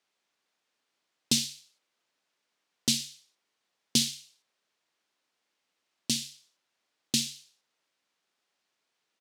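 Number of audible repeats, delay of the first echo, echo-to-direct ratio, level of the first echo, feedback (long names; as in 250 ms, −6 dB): 2, 64 ms, −18.5 dB, −19.0 dB, 28%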